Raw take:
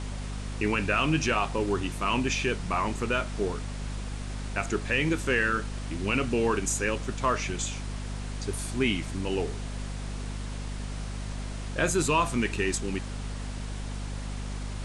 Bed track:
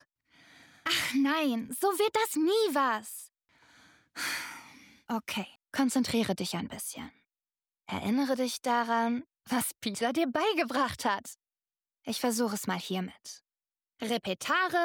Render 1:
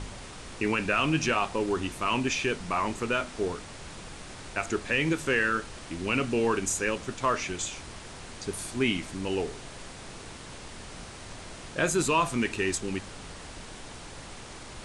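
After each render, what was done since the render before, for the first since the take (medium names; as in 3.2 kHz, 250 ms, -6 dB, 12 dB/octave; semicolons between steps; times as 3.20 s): de-hum 50 Hz, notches 5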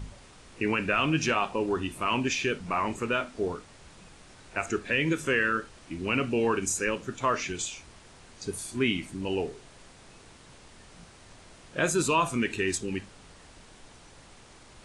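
noise print and reduce 9 dB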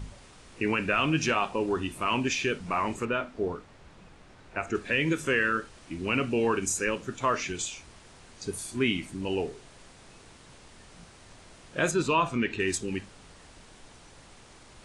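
3.05–4.75 s: low-pass 2.2 kHz 6 dB/octave; 11.91–12.60 s: low-pass 4.3 kHz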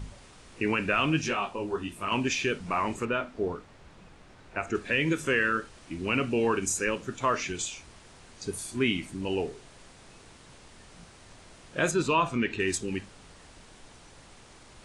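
1.21–2.12 s: detune thickener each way 40 cents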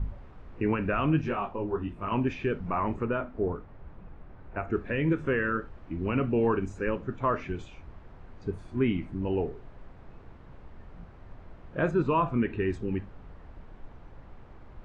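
low-pass 1.4 kHz 12 dB/octave; bass shelf 100 Hz +12 dB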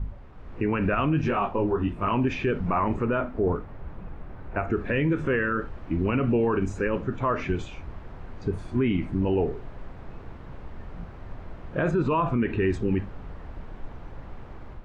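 level rider gain up to 8 dB; peak limiter -16 dBFS, peak gain reduction 8.5 dB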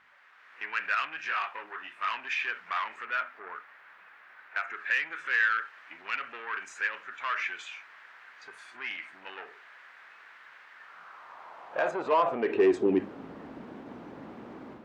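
saturation -20 dBFS, distortion -16 dB; high-pass sweep 1.7 kHz -> 250 Hz, 10.70–13.30 s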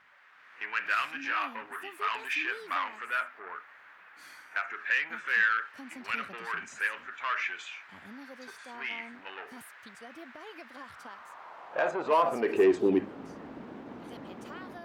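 add bed track -19.5 dB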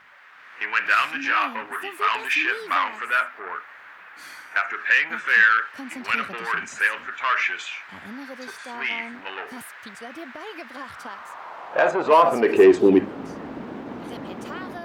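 trim +9.5 dB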